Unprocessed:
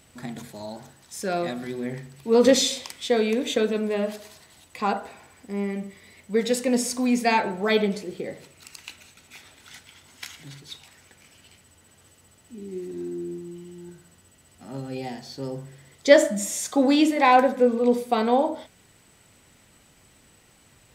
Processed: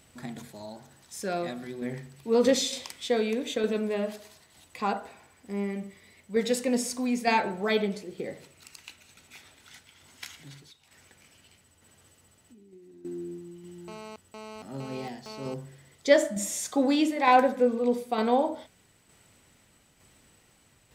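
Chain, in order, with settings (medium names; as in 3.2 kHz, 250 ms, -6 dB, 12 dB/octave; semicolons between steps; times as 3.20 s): 10.62–13.05 s: compression 16:1, threshold -46 dBFS, peak gain reduction 17 dB; tremolo saw down 1.1 Hz, depth 40%; 13.88–15.54 s: mobile phone buzz -40 dBFS; trim -2.5 dB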